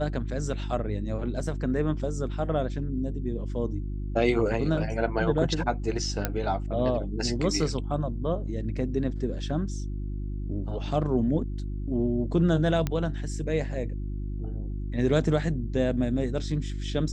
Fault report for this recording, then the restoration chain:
hum 50 Hz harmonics 7 -32 dBFS
6.25 s: pop -10 dBFS
12.87 s: pop -14 dBFS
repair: de-click; de-hum 50 Hz, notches 7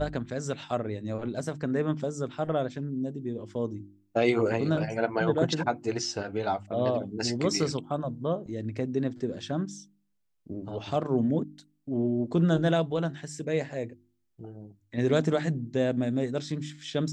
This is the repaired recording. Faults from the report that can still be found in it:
nothing left

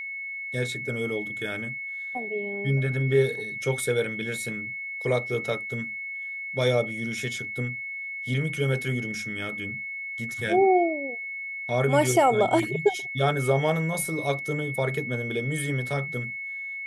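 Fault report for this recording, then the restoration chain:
whine 2.2 kHz -32 dBFS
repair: band-stop 2.2 kHz, Q 30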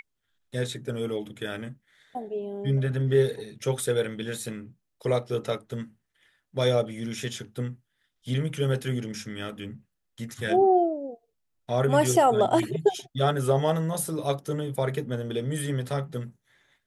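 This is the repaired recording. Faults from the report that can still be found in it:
nothing left

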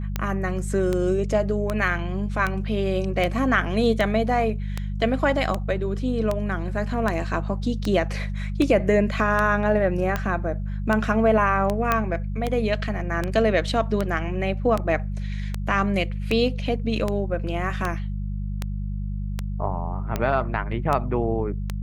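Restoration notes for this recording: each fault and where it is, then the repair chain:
hum 50 Hz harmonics 4 -28 dBFS
tick 78 rpm -11 dBFS
11.92 s: pop -7 dBFS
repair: de-click; de-hum 50 Hz, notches 4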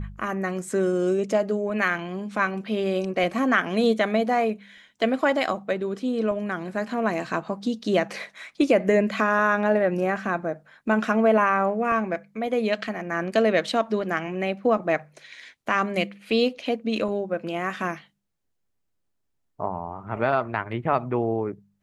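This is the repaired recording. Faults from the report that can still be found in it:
nothing left

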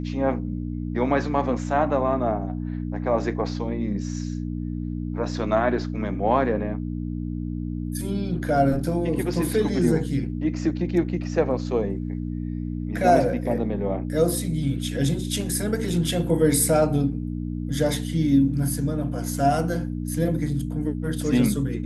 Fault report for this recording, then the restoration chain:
hum 60 Hz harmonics 5 -29 dBFS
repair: de-hum 60 Hz, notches 5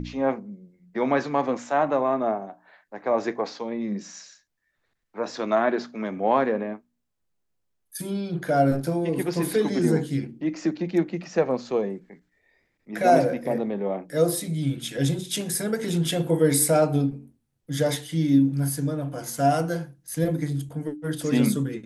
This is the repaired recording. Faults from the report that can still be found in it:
nothing left

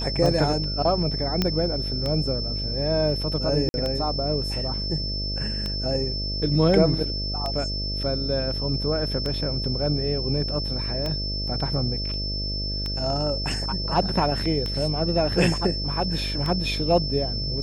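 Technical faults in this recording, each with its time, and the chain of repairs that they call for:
buzz 50 Hz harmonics 13 -30 dBFS
tick 33 1/3 rpm
whine 5.3 kHz -29 dBFS
1.42 s: pop -8 dBFS
3.69–3.74 s: dropout 51 ms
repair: de-click; de-hum 50 Hz, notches 13; band-stop 5.3 kHz, Q 30; interpolate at 3.69 s, 51 ms

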